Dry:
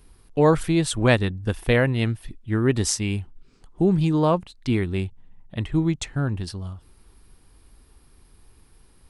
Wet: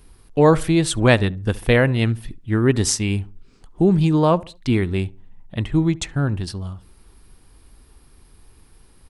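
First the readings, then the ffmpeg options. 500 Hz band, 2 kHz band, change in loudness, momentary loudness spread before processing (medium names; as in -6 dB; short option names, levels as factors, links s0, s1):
+3.5 dB, +3.5 dB, +3.5 dB, 13 LU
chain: -filter_complex "[0:a]asplit=2[s0][s1];[s1]adelay=70,lowpass=f=1200:p=1,volume=0.1,asplit=2[s2][s3];[s3]adelay=70,lowpass=f=1200:p=1,volume=0.38,asplit=2[s4][s5];[s5]adelay=70,lowpass=f=1200:p=1,volume=0.38[s6];[s0][s2][s4][s6]amix=inputs=4:normalize=0,volume=1.5"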